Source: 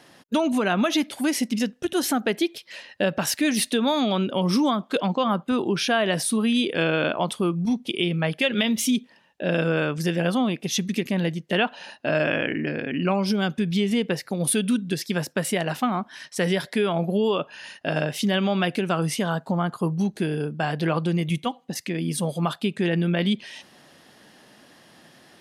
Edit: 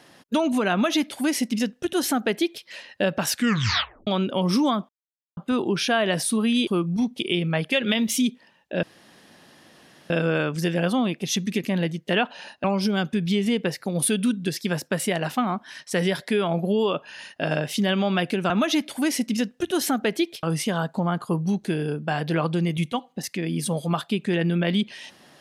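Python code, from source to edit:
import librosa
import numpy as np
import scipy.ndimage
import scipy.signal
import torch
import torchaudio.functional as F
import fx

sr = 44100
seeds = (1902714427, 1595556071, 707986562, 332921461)

y = fx.edit(x, sr, fx.duplicate(start_s=0.72, length_s=1.93, to_s=18.95),
    fx.tape_stop(start_s=3.29, length_s=0.78),
    fx.silence(start_s=4.89, length_s=0.48),
    fx.cut(start_s=6.67, length_s=0.69),
    fx.insert_room_tone(at_s=9.52, length_s=1.27),
    fx.cut(start_s=12.06, length_s=1.03), tone=tone)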